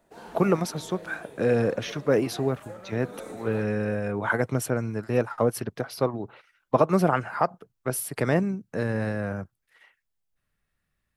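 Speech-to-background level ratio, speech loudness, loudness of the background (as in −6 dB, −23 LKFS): 16.5 dB, −27.0 LKFS, −43.5 LKFS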